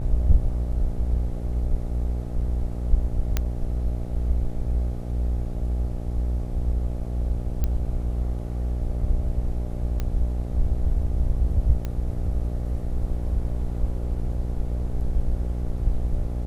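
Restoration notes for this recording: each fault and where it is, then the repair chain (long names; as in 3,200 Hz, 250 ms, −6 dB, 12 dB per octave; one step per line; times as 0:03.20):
mains buzz 60 Hz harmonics 14 −28 dBFS
0:03.37: click −9 dBFS
0:07.64: click −13 dBFS
0:10.00: click −15 dBFS
0:11.85: click −17 dBFS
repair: click removal
hum removal 60 Hz, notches 14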